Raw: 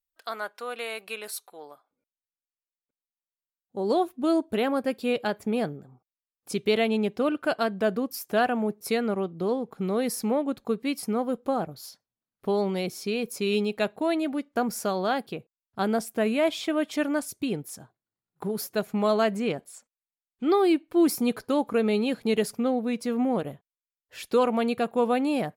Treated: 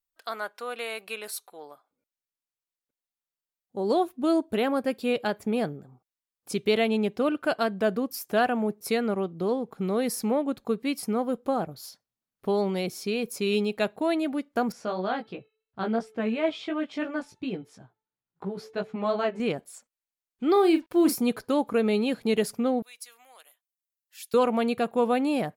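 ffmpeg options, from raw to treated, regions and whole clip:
-filter_complex "[0:a]asettb=1/sr,asplit=3[s0][s1][s2];[s0]atrim=end=14.724[s3];[s1]atrim=start=14.72:end=19.4,asetpts=PTS-STARTPTS,afade=t=in:d=0.004:c=qsin,afade=t=out:st=4.676:d=0.004:c=qsin,lowpass=3800,bandreject=f=438.2:t=h:w=4,bandreject=f=876.4:t=h:w=4,bandreject=f=1314.6:t=h:w=4,bandreject=f=1752.8:t=h:w=4,bandreject=f=2191:t=h:w=4,bandreject=f=2629.2:t=h:w=4,bandreject=f=3067.4:t=h:w=4,bandreject=f=3505.6:t=h:w=4,bandreject=f=3943.8:t=h:w=4,flanger=delay=15.5:depth=2.6:speed=2.9[s4];[s2]atrim=start=19.396[s5];[s3][s4]acrossfade=d=0.004:c1=hsin:c2=qsin[s6];[s6][s5]acrossfade=d=0.004:c1=qsin:c2=hsin,asettb=1/sr,asplit=3[s7][s8][s9];[s7]atrim=end=20.524[s10];[s8]atrim=start=20.52:end=21.14,asetpts=PTS-STARTPTS,afade=t=in:d=0.004:c=qsin,afade=t=out:st=0.616:d=0.004:c=qsin,asplit=2[s11][s12];[s12]adelay=37,volume=0.355[s13];[s11][s13]amix=inputs=2:normalize=0,atrim=end_sample=27342,acompressor=mode=upward:threshold=0.0141:ratio=2.5:attack=3.2:release=140:knee=2.83:detection=peak,acrusher=bits=8:mix=0:aa=0.5[s14];[s9]atrim=start=21.136[s15];[s10][s14]acrossfade=d=0.004:c1=hsin:c2=qsin[s16];[s16][s15]acrossfade=d=0.004:c1=qsin:c2=hsin,asettb=1/sr,asplit=3[s17][s18][s19];[s17]atrim=end=22.824[s20];[s18]atrim=start=22.82:end=24.34,asetpts=PTS-STARTPTS,afade=t=in:d=0.004:c=qsin,afade=t=out:st=1.516:d=0.004:c=qsin,highpass=820,aderivative[s21];[s19]atrim=start=24.336[s22];[s20][s21]acrossfade=d=0.004:c1=hsin:c2=qsin[s23];[s23][s22]acrossfade=d=0.004:c1=qsin:c2=hsin"

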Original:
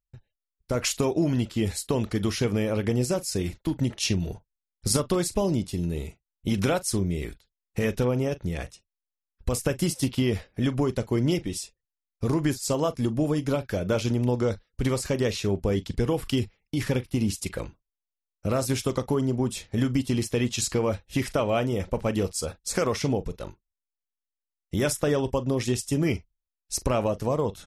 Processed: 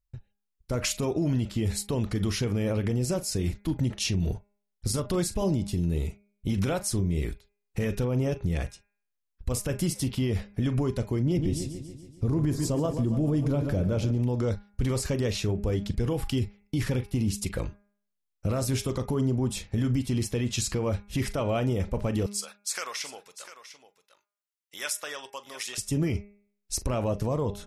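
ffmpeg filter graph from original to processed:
-filter_complex "[0:a]asettb=1/sr,asplit=3[s0][s1][s2];[s0]atrim=end=11.224[s3];[s1]atrim=start=11.22:end=14.18,asetpts=PTS-STARTPTS,afade=t=in:d=0.004:c=qsin,afade=t=out:st=2.956:d=0.004:c=qsin,tiltshelf=f=730:g=4.5,aecho=1:1:142|284|426|568|710|852:0.224|0.128|0.0727|0.0415|0.0236|0.0135,atrim=end_sample=130536[s4];[s2]atrim=start=14.176[s5];[s3][s4]acrossfade=d=0.004:c1=hsin:c2=qsin[s6];[s6][s5]acrossfade=d=0.004:c1=qsin:c2=hsin,asettb=1/sr,asplit=3[s7][s8][s9];[s7]atrim=end=22.264[s10];[s8]atrim=start=22.26:end=25.78,asetpts=PTS-STARTPTS,afade=t=in:d=0.004:c=qsin,afade=t=out:st=3.516:d=0.004:c=qsin,highpass=1400,aecho=1:1:699:0.211,atrim=end_sample=155232[s11];[s9]atrim=start=25.776[s12];[s10][s11]acrossfade=d=0.004:c1=hsin:c2=qsin[s13];[s13][s12]acrossfade=d=0.004:c1=qsin:c2=hsin,lowshelf=f=180:g=8,bandreject=f=203.8:t=h:w=4,bandreject=f=407.6:t=h:w=4,bandreject=f=611.4:t=h:w=4,bandreject=f=815.2:t=h:w=4,bandreject=f=1019:t=h:w=4,bandreject=f=1222.8:t=h:w=4,bandreject=f=1426.6:t=h:w=4,bandreject=f=1630.4:t=h:w=4,bandreject=f=1834.2:t=h:w=4,bandreject=f=2038:t=h:w=4,bandreject=f=2241.8:t=h:w=4,bandreject=f=2445.6:t=h:w=4,bandreject=f=2649.4:t=h:w=4,alimiter=limit=0.119:level=0:latency=1:release=54"

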